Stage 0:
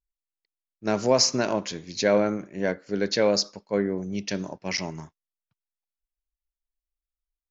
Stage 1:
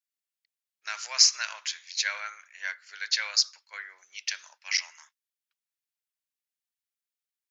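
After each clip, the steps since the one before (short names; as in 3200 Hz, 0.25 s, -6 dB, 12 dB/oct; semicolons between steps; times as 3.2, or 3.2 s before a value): HPF 1500 Hz 24 dB/oct; gain +3 dB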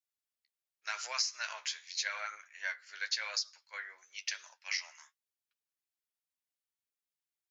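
compressor 8:1, threshold -27 dBFS, peak gain reduction 13 dB; flange 0.9 Hz, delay 7.9 ms, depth 7.2 ms, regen +33%; dynamic EQ 530 Hz, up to +5 dB, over -57 dBFS, Q 0.73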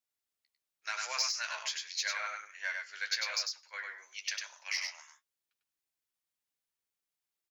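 in parallel at -3 dB: soft clip -27.5 dBFS, distortion -15 dB; on the sum: echo 99 ms -4 dB; gain -3.5 dB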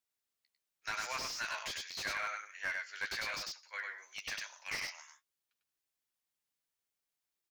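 slew limiter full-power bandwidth 49 Hz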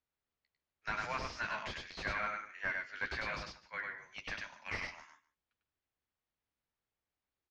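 octaver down 2 oct, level +2 dB; tape spacing loss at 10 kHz 29 dB; echo 0.15 s -19 dB; gain +5.5 dB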